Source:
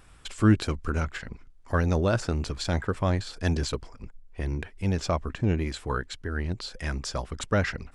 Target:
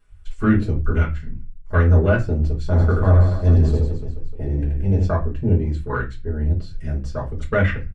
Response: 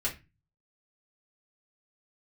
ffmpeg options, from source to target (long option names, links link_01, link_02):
-filter_complex "[0:a]afwtdn=0.0224,asplit=3[link_01][link_02][link_03];[link_01]afade=type=out:start_time=2.75:duration=0.02[link_04];[link_02]aecho=1:1:80|176|291.2|429.4|595.3:0.631|0.398|0.251|0.158|0.1,afade=type=in:start_time=2.75:duration=0.02,afade=type=out:start_time=5.02:duration=0.02[link_05];[link_03]afade=type=in:start_time=5.02:duration=0.02[link_06];[link_04][link_05][link_06]amix=inputs=3:normalize=0[link_07];[1:a]atrim=start_sample=2205[link_08];[link_07][link_08]afir=irnorm=-1:irlink=0"